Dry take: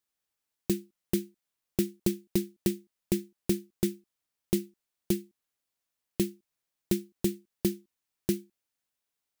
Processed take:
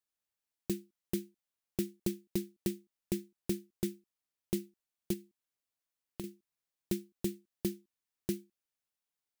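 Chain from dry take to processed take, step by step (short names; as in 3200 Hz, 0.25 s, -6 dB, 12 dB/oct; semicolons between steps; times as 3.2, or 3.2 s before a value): 5.13–6.24 compressor, threshold -33 dBFS, peak gain reduction 11 dB; gain -6.5 dB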